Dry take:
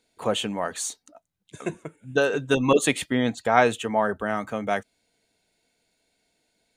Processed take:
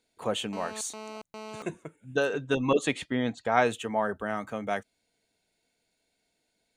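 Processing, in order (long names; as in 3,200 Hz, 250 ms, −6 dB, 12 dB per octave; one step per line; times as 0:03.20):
0:00.53–0:01.62: phone interference −36 dBFS
0:02.33–0:03.52: high-frequency loss of the air 62 metres
level −5 dB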